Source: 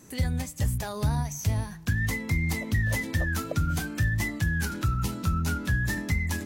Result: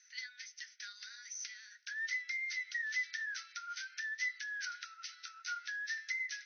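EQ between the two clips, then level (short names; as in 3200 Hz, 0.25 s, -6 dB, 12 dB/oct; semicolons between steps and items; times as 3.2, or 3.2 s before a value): rippled Chebyshev high-pass 1400 Hz, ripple 6 dB; brick-wall FIR low-pass 6300 Hz; -2.5 dB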